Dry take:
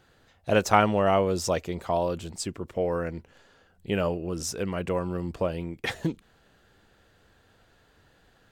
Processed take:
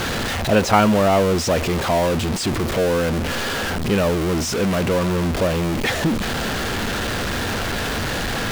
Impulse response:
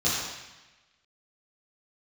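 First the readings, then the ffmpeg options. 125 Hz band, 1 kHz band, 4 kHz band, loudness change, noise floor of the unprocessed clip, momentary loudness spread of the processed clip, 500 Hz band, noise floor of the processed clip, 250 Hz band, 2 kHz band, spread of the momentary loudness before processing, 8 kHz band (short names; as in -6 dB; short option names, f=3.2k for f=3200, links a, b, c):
+11.0 dB, +7.0 dB, +14.0 dB, +7.5 dB, -62 dBFS, 7 LU, +7.5 dB, -24 dBFS, +11.0 dB, +12.0 dB, 13 LU, +10.0 dB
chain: -filter_complex "[0:a]aeval=exprs='val(0)+0.5*0.106*sgn(val(0))':c=same,equalizer=f=230:t=o:w=0.31:g=6,acrossover=split=5800[a][b];[b]alimiter=level_in=5dB:limit=-24dB:level=0:latency=1,volume=-5dB[c];[a][c]amix=inputs=2:normalize=0,volume=2dB"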